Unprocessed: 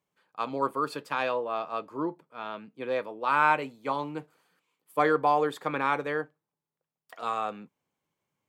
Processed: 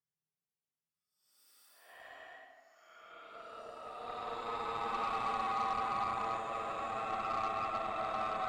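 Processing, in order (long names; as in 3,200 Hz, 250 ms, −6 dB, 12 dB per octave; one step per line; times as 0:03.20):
spectral magnitudes quantised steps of 15 dB
extreme stretch with random phases 20×, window 0.05 s, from 0:07.02
harmonic generator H 6 −21 dB, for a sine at −17.5 dBFS
level −6.5 dB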